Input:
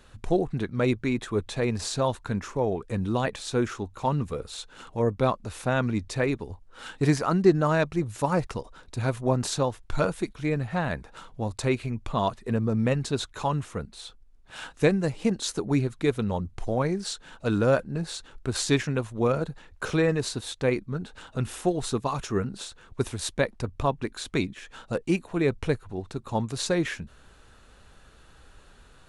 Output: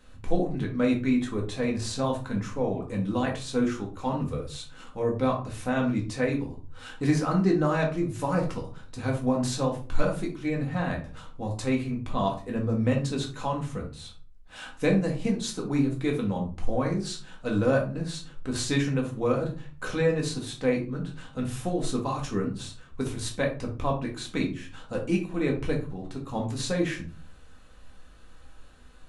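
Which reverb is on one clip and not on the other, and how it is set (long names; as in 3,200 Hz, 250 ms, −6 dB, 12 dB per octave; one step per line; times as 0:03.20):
rectangular room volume 230 cubic metres, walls furnished, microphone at 2 metres
level −5.5 dB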